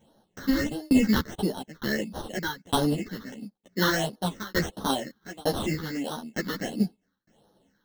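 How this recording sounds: aliases and images of a low sample rate 2.4 kHz, jitter 0%; phasing stages 6, 1.5 Hz, lowest notch 650–2300 Hz; tremolo saw down 1.1 Hz, depth 100%; a shimmering, thickened sound

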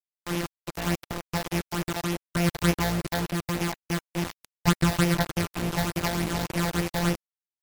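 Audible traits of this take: a buzz of ramps at a fixed pitch in blocks of 256 samples; phasing stages 8, 3.4 Hz, lowest notch 340–1300 Hz; a quantiser's noise floor 6-bit, dither none; MP3

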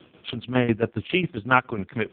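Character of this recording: tremolo saw down 7.3 Hz, depth 80%; a quantiser's noise floor 12-bit, dither none; AMR-NB

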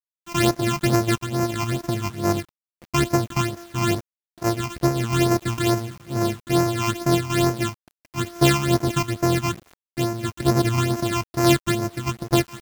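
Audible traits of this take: a buzz of ramps at a fixed pitch in blocks of 128 samples; phasing stages 8, 2.3 Hz, lowest notch 490–3400 Hz; a quantiser's noise floor 8-bit, dither none; random flutter of the level

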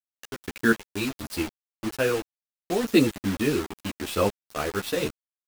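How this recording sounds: random-step tremolo 4.2 Hz, depth 80%; a quantiser's noise floor 6-bit, dither none; a shimmering, thickened sound

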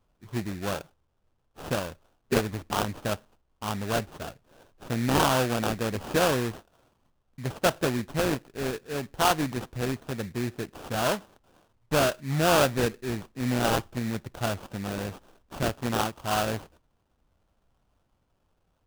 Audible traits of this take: aliases and images of a low sample rate 2.1 kHz, jitter 20%

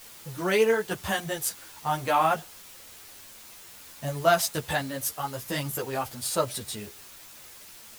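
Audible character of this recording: tremolo saw down 1.1 Hz, depth 45%; a quantiser's noise floor 8-bit, dither triangular; a shimmering, thickened sound

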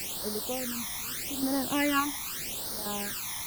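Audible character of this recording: random-step tremolo, depth 85%; a quantiser's noise floor 6-bit, dither triangular; phasing stages 12, 0.82 Hz, lowest notch 470–2600 Hz; Vorbis

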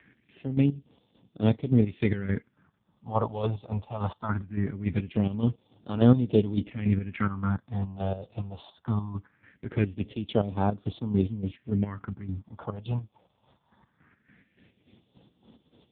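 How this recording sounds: chopped level 3.5 Hz, depth 65%, duty 45%; a quantiser's noise floor 12-bit, dither triangular; phasing stages 4, 0.21 Hz, lowest notch 290–1900 Hz; AMR-NB

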